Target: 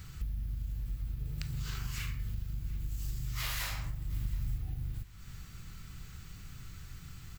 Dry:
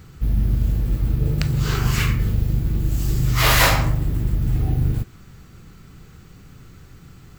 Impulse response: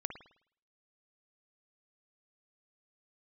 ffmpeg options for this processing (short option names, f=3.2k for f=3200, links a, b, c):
-filter_complex "[0:a]equalizer=f=400:w=0.45:g=-15,acompressor=threshold=-36dB:ratio=6,asettb=1/sr,asplit=3[a][b][c];[a]atrim=end=4.104[d];[b]atrim=start=4.1:end=4.58,asetpts=PTS-STARTPTS,afade=t=in:d=0.004:c=qsin,afade=t=out:st=0.476:d=0.004:c=qsin,bass=f=250:g=3,treble=f=4k:g=4[e];[c]atrim=start=4.576[f];[d][e]acrossfade=d=0.004:c1=hsin:c2=qsin[g];[g][f]acrossfade=d=0.004:c1=qsin:c2=hsin,aecho=1:1:724|1448:0.0794|0.0254,volume=1dB"